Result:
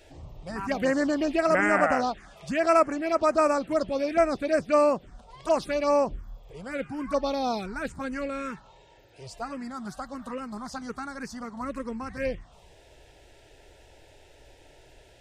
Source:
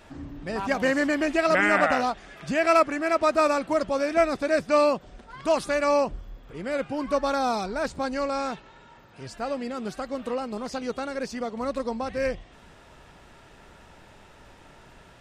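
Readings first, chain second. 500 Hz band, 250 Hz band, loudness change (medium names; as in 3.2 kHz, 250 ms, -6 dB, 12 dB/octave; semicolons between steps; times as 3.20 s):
-1.5 dB, -1.0 dB, -1.5 dB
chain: touch-sensitive phaser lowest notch 180 Hz, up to 3.7 kHz, full sweep at -18 dBFS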